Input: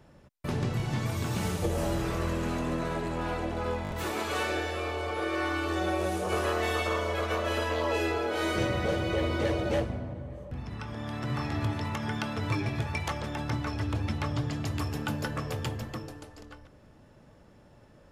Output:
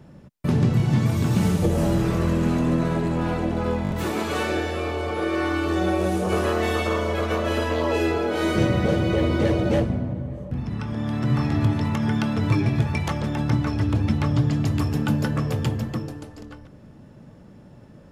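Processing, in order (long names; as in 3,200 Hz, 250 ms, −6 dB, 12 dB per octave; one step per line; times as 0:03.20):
parametric band 180 Hz +10.5 dB 1.9 octaves
level +3 dB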